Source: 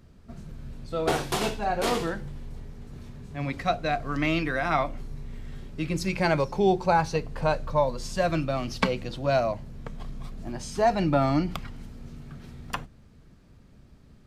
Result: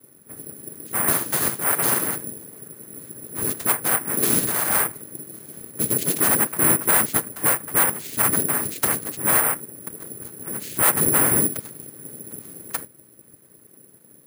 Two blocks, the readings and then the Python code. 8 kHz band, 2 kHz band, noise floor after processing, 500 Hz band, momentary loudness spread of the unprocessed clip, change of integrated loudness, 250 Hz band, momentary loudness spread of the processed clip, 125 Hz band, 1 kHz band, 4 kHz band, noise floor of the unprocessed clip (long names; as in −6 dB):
+23.0 dB, +5.0 dB, −52 dBFS, −4.0 dB, 20 LU, +8.0 dB, −0.5 dB, 20 LU, −2.5 dB, −1.0 dB, +1.0 dB, −54 dBFS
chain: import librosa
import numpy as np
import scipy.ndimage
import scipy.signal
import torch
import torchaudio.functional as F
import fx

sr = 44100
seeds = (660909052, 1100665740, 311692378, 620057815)

y = fx.noise_vocoder(x, sr, seeds[0], bands=3)
y = np.clip(10.0 ** (18.5 / 20.0) * y, -1.0, 1.0) / 10.0 ** (18.5 / 20.0)
y = (np.kron(scipy.signal.resample_poly(y, 1, 4), np.eye(4)[0]) * 4)[:len(y)]